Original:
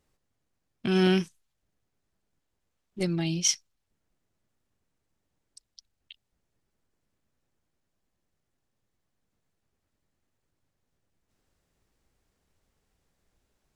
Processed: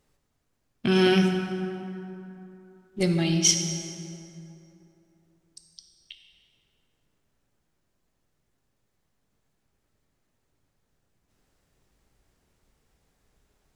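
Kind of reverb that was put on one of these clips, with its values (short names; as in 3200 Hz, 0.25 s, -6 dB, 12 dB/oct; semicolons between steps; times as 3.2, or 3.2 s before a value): plate-style reverb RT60 3 s, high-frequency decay 0.55×, DRR 3.5 dB; gain +4 dB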